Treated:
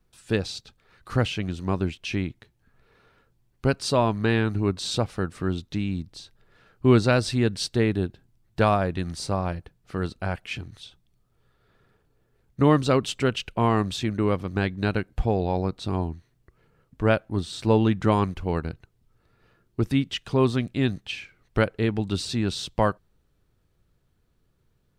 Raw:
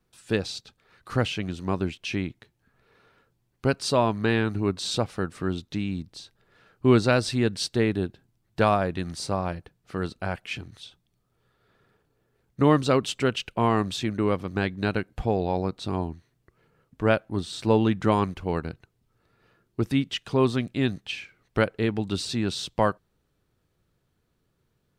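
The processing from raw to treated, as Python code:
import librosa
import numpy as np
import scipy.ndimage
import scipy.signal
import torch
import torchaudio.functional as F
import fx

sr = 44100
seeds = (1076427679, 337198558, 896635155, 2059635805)

y = fx.low_shelf(x, sr, hz=65.0, db=12.0)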